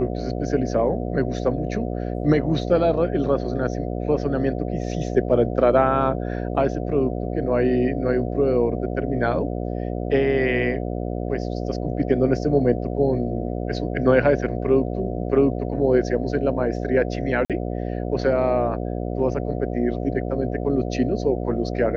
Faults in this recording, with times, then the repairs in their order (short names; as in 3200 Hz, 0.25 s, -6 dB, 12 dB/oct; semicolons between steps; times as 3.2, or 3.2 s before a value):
buzz 60 Hz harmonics 12 -27 dBFS
17.45–17.5 gap 47 ms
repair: de-hum 60 Hz, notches 12; interpolate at 17.45, 47 ms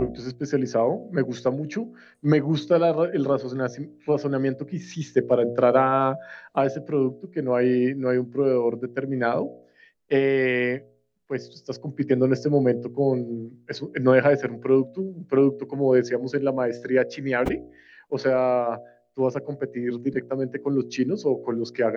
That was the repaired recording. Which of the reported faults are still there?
none